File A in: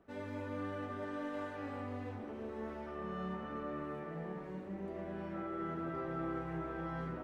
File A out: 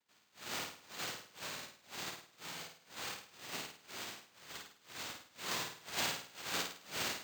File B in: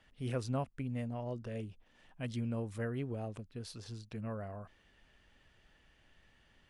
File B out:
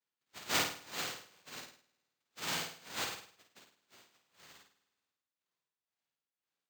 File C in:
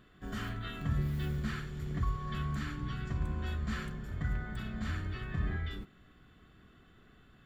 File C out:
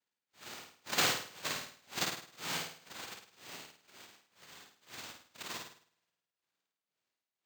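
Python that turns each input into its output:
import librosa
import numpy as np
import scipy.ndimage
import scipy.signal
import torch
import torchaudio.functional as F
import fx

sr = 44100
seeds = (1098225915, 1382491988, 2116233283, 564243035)

p1 = x * (1.0 - 0.97 / 2.0 + 0.97 / 2.0 * np.cos(2.0 * np.pi * 2.0 * (np.arange(len(x)) / sr)))
p2 = fx.noise_vocoder(p1, sr, seeds[0], bands=1)
p3 = p2 + fx.room_flutter(p2, sr, wall_m=9.0, rt60_s=1.2, dry=0)
p4 = np.repeat(scipy.signal.resample_poly(p3, 1, 4), 4)[:len(p3)]
p5 = fx.upward_expand(p4, sr, threshold_db=-53.0, expansion=2.5)
y = p5 * 10.0 ** (5.5 / 20.0)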